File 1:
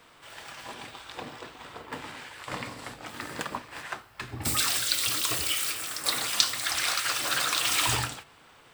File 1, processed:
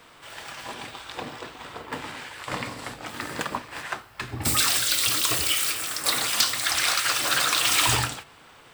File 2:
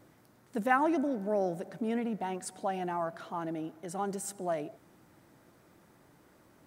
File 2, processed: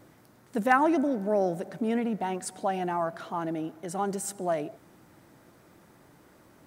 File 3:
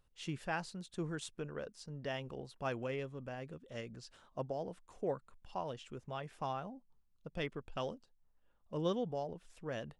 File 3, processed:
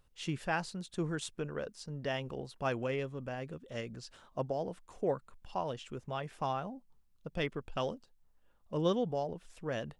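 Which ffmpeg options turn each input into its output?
-af "aeval=exprs='0.188*(abs(mod(val(0)/0.188+3,4)-2)-1)':channel_layout=same,volume=4.5dB"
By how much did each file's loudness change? +4.0, +4.5, +4.5 LU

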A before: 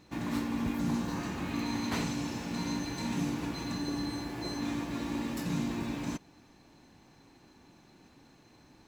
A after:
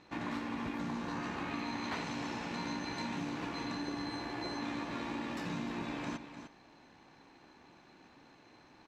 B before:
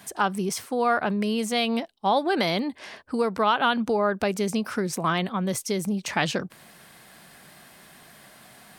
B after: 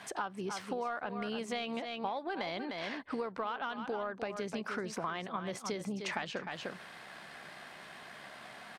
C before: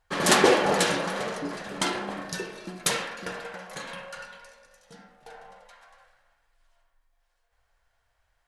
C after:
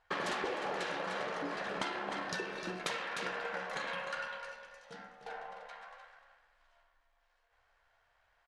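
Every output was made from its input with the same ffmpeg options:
-filter_complex "[0:a]asplit=2[link_01][link_02];[link_02]highpass=frequency=720:poles=1,volume=12dB,asoftclip=type=tanh:threshold=-4dB[link_03];[link_01][link_03]amix=inputs=2:normalize=0,lowpass=frequency=4900:poles=1,volume=-6dB,aemphasis=mode=reproduction:type=50fm,asplit=2[link_04][link_05];[link_05]aecho=0:1:303:0.266[link_06];[link_04][link_06]amix=inputs=2:normalize=0,acompressor=threshold=-31dB:ratio=10,tremolo=f=70:d=0.261,volume=-2dB"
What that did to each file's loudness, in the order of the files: −4.5, −13.5, −12.5 LU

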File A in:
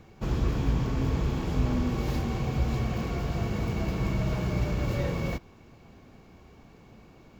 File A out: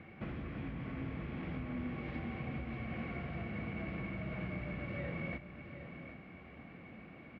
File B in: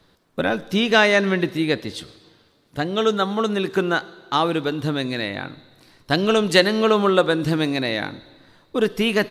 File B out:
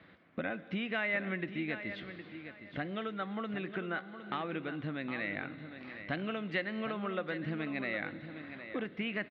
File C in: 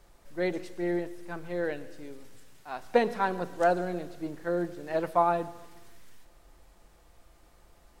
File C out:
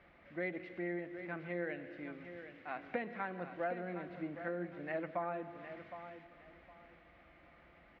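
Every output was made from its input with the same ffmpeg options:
-af "acompressor=threshold=-40dB:ratio=3,highpass=100,equalizer=frequency=120:width_type=q:width=4:gain=-6,equalizer=frequency=420:width_type=q:width=4:gain=-8,equalizer=frequency=930:width_type=q:width=4:gain=-8,equalizer=frequency=2100:width_type=q:width=4:gain=8,lowpass=frequency=2800:width=0.5412,lowpass=frequency=2800:width=1.3066,aecho=1:1:763|1526|2289:0.299|0.0716|0.0172,volume=2dB"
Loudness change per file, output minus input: −13.0, −17.0, −12.0 LU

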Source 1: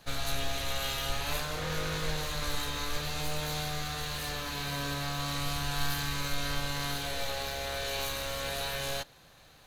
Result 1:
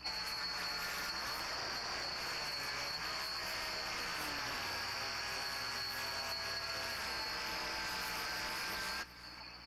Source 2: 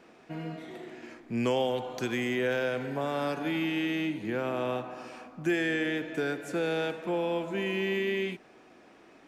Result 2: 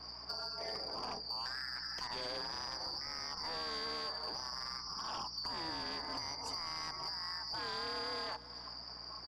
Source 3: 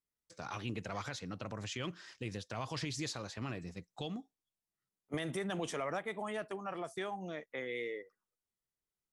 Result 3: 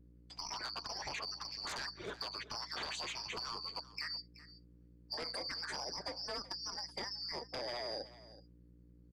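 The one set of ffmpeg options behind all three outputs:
-filter_complex "[0:a]afftfilt=real='real(if(lt(b,272),68*(eq(floor(b/68),0)*1+eq(floor(b/68),1)*2+eq(floor(b/68),2)*3+eq(floor(b/68),3)*0)+mod(b,68),b),0)':imag='imag(if(lt(b,272),68*(eq(floor(b/68),0)*1+eq(floor(b/68),1)*2+eq(floor(b/68),2)*3+eq(floor(b/68),3)*0)+mod(b,68),b),0)':win_size=2048:overlap=0.75,afftdn=noise_reduction=17:noise_floor=-51,adynamicequalizer=threshold=0.00158:dfrequency=1600:dqfactor=4.2:tfrequency=1600:tqfactor=4.2:attack=5:release=100:ratio=0.375:range=2.5:mode=boostabove:tftype=bell,acrossover=split=260|5000[link_01][link_02][link_03];[link_01]acompressor=threshold=-51dB:ratio=4[link_04];[link_02]acompressor=threshold=-43dB:ratio=4[link_05];[link_03]acompressor=threshold=-36dB:ratio=4[link_06];[link_04][link_05][link_06]amix=inputs=3:normalize=0,asplit=2[link_07][link_08];[link_08]alimiter=level_in=10.5dB:limit=-24dB:level=0:latency=1:release=254,volume=-10.5dB,volume=-0.5dB[link_09];[link_07][link_09]amix=inputs=2:normalize=0,acompressor=threshold=-45dB:ratio=8,acrossover=split=490|2000[link_10][link_11][link_12];[link_11]aeval=exprs='0.00794*sin(PI/2*5.62*val(0)/0.00794)':channel_layout=same[link_13];[link_10][link_13][link_12]amix=inputs=3:normalize=0,aeval=exprs='val(0)+0.000794*(sin(2*PI*60*n/s)+sin(2*PI*2*60*n/s)/2+sin(2*PI*3*60*n/s)/3+sin(2*PI*4*60*n/s)/4+sin(2*PI*5*60*n/s)/5)':channel_layout=same,asoftclip=type=tanh:threshold=-31.5dB,tremolo=f=230:d=0.71,aecho=1:1:377:0.141,volume=6dB"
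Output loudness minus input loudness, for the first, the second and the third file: −5.0, −8.5, 0.0 LU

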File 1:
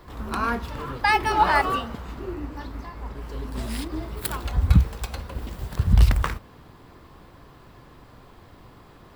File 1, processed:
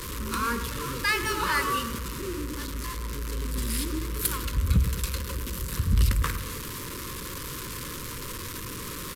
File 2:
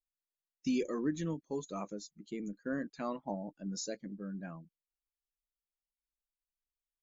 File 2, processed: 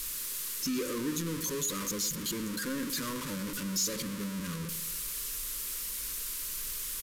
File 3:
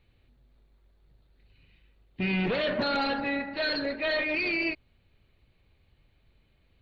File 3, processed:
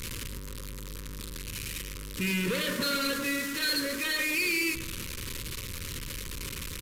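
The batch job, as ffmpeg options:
-filter_complex "[0:a]aeval=exprs='val(0)+0.5*0.0398*sgn(val(0))':channel_layout=same,asuperstop=centerf=730:order=8:qfactor=1.9,crystalizer=i=2:c=0,asplit=2[link_01][link_02];[link_02]adelay=109,lowpass=frequency=2000:poles=1,volume=-11dB,asplit=2[link_03][link_04];[link_04]adelay=109,lowpass=frequency=2000:poles=1,volume=0.51,asplit=2[link_05][link_06];[link_06]adelay=109,lowpass=frequency=2000:poles=1,volume=0.51,asplit=2[link_07][link_08];[link_08]adelay=109,lowpass=frequency=2000:poles=1,volume=0.51,asplit=2[link_09][link_10];[link_10]adelay=109,lowpass=frequency=2000:poles=1,volume=0.51[link_11];[link_03][link_05][link_07][link_09][link_11]amix=inputs=5:normalize=0[link_12];[link_01][link_12]amix=inputs=2:normalize=0,aresample=32000,aresample=44100,asoftclip=type=tanh:threshold=-7.5dB,volume=-5dB"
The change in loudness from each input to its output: −4.5, +5.5, −2.5 LU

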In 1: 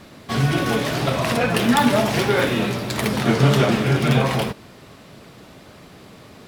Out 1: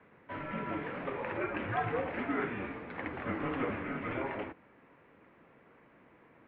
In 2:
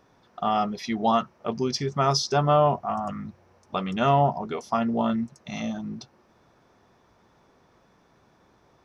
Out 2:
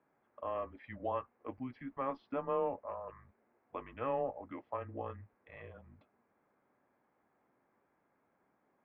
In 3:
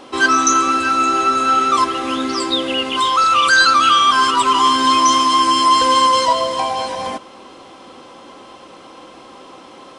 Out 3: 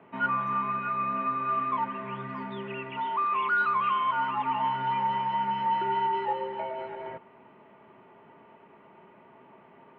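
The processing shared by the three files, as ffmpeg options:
-af "equalizer=frequency=750:width=0.35:gain=-5,highpass=frequency=330:width_type=q:width=0.5412,highpass=frequency=330:width_type=q:width=1.307,lowpass=frequency=2400:width_type=q:width=0.5176,lowpass=frequency=2400:width_type=q:width=0.7071,lowpass=frequency=2400:width_type=q:width=1.932,afreqshift=-130,volume=-9dB"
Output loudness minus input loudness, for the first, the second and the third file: −17.0, −15.0, −15.0 LU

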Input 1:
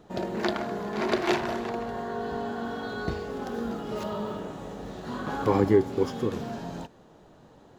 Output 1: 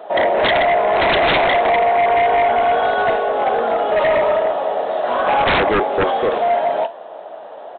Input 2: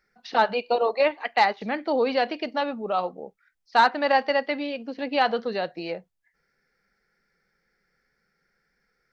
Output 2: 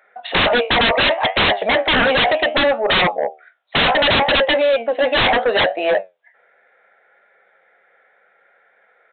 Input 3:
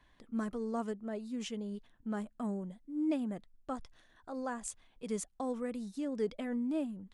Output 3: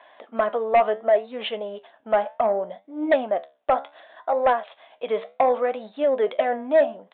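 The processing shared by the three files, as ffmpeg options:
-af "acontrast=31,flanger=delay=9:depth=7:regen=73:speed=0.68:shape=triangular,highpass=frequency=640:width_type=q:width=4.9,aresample=8000,aeval=exprs='0.708*sin(PI/2*8.91*val(0)/0.708)':channel_layout=same,aresample=44100,volume=-8.5dB"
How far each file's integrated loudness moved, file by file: +13.5, +9.0, +15.0 LU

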